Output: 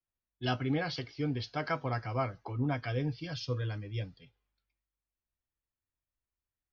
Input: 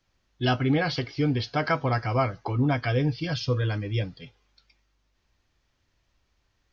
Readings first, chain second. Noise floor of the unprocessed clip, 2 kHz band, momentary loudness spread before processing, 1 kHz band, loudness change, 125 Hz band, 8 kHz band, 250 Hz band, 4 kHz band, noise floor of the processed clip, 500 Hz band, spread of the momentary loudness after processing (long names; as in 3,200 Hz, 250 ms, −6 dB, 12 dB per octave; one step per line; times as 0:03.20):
−73 dBFS, −8.5 dB, 5 LU, −8.5 dB, −8.5 dB, −8.5 dB, can't be measured, −8.5 dB, −8.0 dB, below −85 dBFS, −8.5 dB, 6 LU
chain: low-pass that shuts in the quiet parts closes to 2,500 Hz, open at −24.5 dBFS
multiband upward and downward expander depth 40%
level −8.5 dB